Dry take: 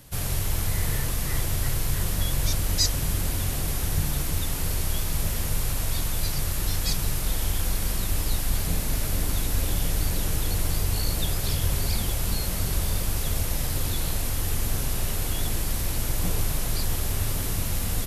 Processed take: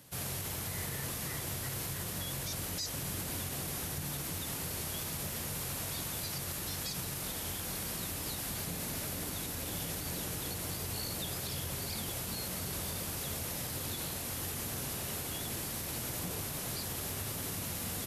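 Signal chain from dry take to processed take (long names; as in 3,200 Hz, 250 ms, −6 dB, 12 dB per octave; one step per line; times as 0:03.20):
high-pass filter 130 Hz 12 dB per octave
brickwall limiter −22.5 dBFS, peak gain reduction 11 dB
level −5.5 dB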